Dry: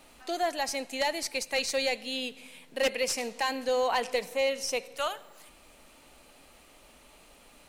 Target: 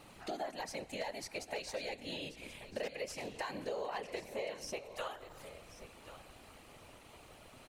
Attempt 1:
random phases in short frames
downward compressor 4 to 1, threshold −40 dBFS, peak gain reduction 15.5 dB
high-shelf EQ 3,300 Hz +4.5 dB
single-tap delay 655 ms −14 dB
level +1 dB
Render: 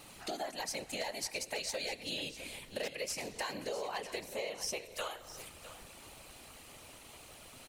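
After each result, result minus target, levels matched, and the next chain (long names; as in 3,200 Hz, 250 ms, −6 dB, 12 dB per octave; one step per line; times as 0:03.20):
echo 429 ms early; 8,000 Hz band +6.0 dB
random phases in short frames
downward compressor 4 to 1, threshold −40 dBFS, peak gain reduction 15.5 dB
high-shelf EQ 3,300 Hz +4.5 dB
single-tap delay 1,084 ms −14 dB
level +1 dB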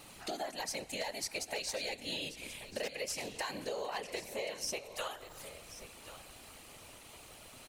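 8,000 Hz band +6.5 dB
random phases in short frames
downward compressor 4 to 1, threshold −40 dBFS, peak gain reduction 15.5 dB
high-shelf EQ 3,300 Hz −6.5 dB
single-tap delay 1,084 ms −14 dB
level +1 dB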